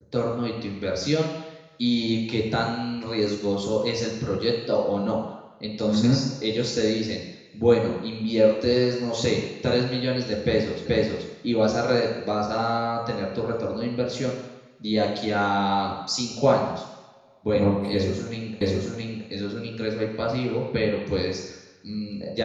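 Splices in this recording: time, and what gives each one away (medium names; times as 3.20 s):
10.86 s: repeat of the last 0.43 s
18.61 s: repeat of the last 0.67 s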